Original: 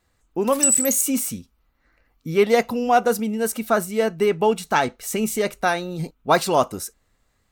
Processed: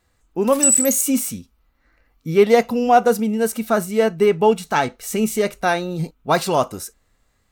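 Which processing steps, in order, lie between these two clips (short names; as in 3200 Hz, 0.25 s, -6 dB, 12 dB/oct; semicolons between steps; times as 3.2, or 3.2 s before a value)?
harmonic-percussive split harmonic +5 dB; gain -1 dB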